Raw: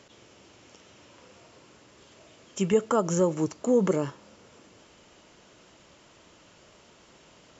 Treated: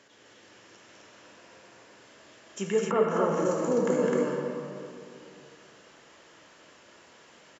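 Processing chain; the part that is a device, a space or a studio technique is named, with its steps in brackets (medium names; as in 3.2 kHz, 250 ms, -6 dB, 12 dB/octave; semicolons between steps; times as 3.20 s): stadium PA (high-pass 240 Hz 6 dB/octave; peaking EQ 1.7 kHz +7 dB 0.34 oct; loudspeakers at several distances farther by 71 m -5 dB, 88 m -2 dB; reverberation RT60 2.6 s, pre-delay 10 ms, DRR 0 dB); 2.90–3.44 s: low-pass 2.2 kHz -> 4 kHz 12 dB/octave; trim -4.5 dB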